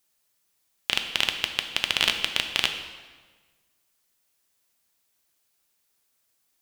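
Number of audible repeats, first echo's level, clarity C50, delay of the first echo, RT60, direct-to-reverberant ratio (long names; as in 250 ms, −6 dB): no echo audible, no echo audible, 7.5 dB, no echo audible, 1.4 s, 5.0 dB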